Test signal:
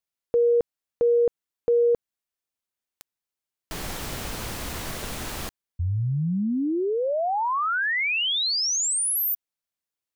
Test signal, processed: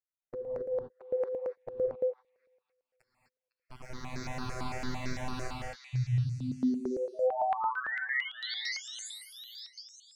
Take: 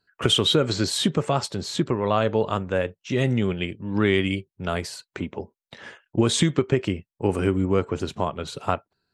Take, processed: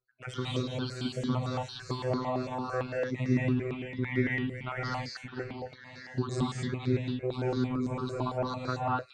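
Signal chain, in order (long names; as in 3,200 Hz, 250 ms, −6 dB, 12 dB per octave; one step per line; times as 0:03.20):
time-frequency cells dropped at random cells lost 31%
parametric band 3,100 Hz −12.5 dB 0.25 octaves
speech leveller within 4 dB 0.5 s
phases set to zero 127 Hz
high-frequency loss of the air 110 metres
echo through a band-pass that steps 505 ms, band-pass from 2,800 Hz, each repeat 0.7 octaves, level −5 dB
reverb whose tail is shaped and stops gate 280 ms rising, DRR −3.5 dB
step-sequenced phaser 8.9 Hz 890–3,000 Hz
level −5 dB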